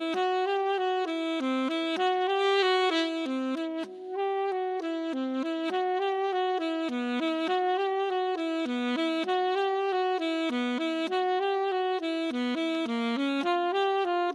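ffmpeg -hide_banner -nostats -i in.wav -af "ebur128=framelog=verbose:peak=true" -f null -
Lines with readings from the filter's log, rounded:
Integrated loudness:
  I:         -28.5 LUFS
  Threshold: -38.5 LUFS
Loudness range:
  LRA:         2.8 LU
  Threshold: -48.6 LUFS
  LRA low:   -30.2 LUFS
  LRA high:  -27.3 LUFS
True peak:
  Peak:      -12.8 dBFS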